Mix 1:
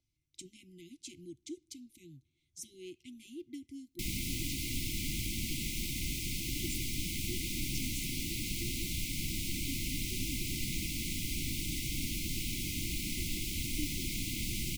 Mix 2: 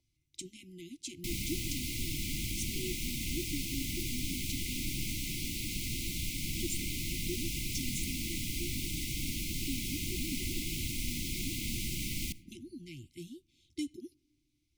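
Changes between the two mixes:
speech +5.0 dB
background: entry −2.75 s

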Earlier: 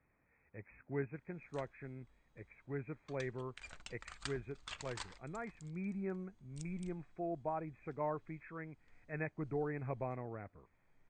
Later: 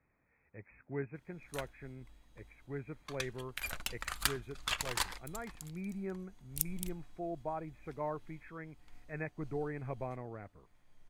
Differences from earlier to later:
background +12.0 dB
master: remove linear-phase brick-wall low-pass 8,800 Hz

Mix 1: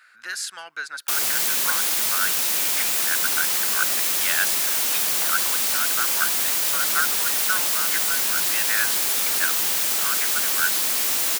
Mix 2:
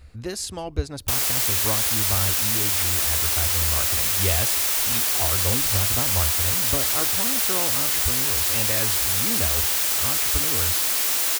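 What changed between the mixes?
speech: remove high-pass with resonance 1,500 Hz, resonance Q 8.5
master: add low shelf with overshoot 110 Hz +13 dB, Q 3

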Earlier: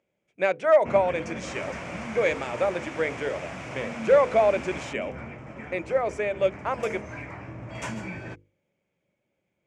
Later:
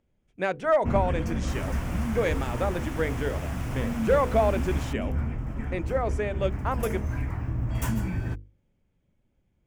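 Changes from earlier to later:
speech: add low-pass filter 7,000 Hz
master: remove loudspeaker in its box 210–7,600 Hz, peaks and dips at 250 Hz −7 dB, 580 Hz +6 dB, 2,300 Hz +8 dB

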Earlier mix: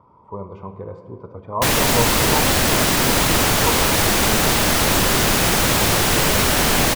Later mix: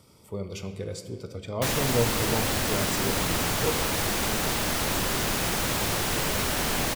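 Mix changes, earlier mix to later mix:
speech: remove low-pass with resonance 1,000 Hz, resonance Q 12
background −10.0 dB

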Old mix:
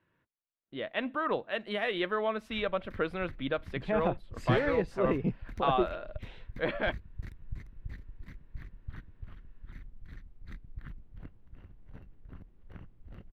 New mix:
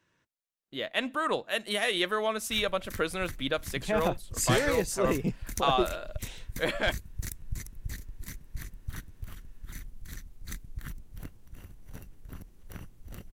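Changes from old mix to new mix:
background +4.0 dB
master: remove high-frequency loss of the air 400 metres

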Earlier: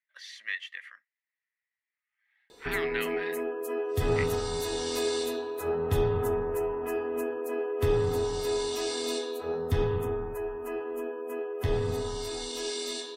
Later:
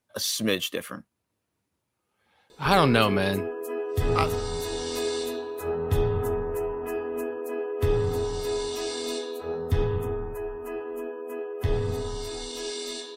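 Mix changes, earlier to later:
speech: remove four-pole ladder band-pass 2,000 Hz, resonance 85%
master: add low-shelf EQ 150 Hz +4.5 dB

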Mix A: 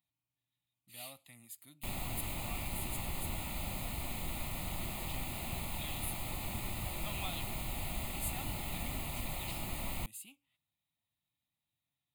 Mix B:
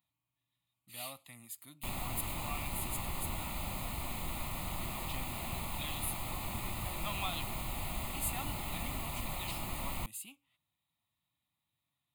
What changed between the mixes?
speech +3.5 dB
master: add parametric band 1,100 Hz +6.5 dB 0.56 octaves

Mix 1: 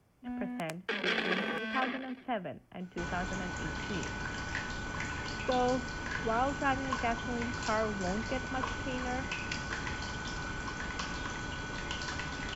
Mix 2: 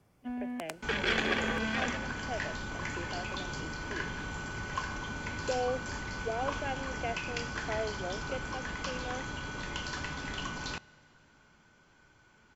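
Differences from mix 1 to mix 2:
speech: add phaser with its sweep stopped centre 490 Hz, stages 4
first sound: send on
second sound: entry −2.15 s

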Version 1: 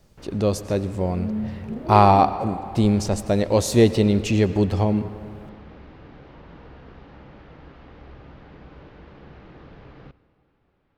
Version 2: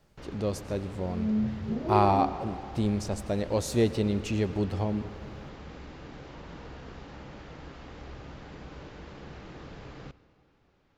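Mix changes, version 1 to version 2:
speech −9.0 dB
first sound: remove high-frequency loss of the air 220 metres

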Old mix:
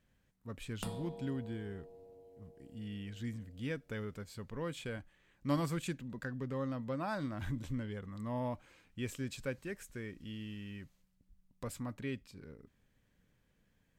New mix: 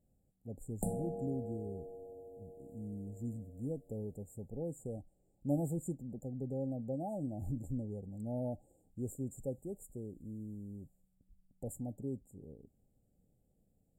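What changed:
background +6.5 dB
master: add linear-phase brick-wall band-stop 850–6,900 Hz

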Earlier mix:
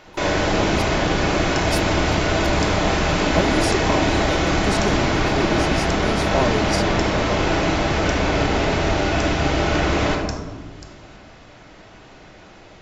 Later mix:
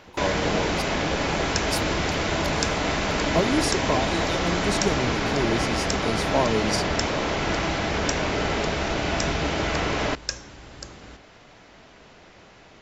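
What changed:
second sound +7.0 dB
reverb: off

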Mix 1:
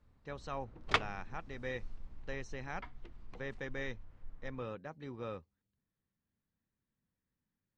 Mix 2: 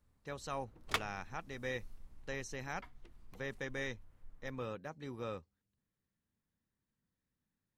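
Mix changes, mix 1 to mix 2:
background −6.5 dB
master: remove high-frequency loss of the air 130 metres

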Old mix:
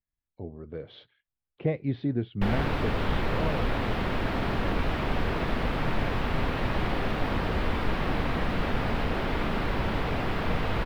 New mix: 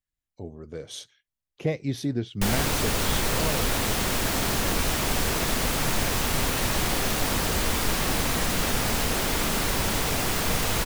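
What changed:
speech: remove Butterworth low-pass 4,500 Hz 36 dB per octave
master: remove high-frequency loss of the air 410 metres

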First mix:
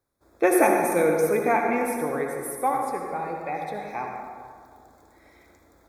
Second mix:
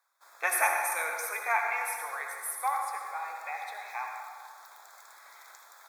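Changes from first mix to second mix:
background +11.5 dB
master: add high-pass filter 940 Hz 24 dB per octave

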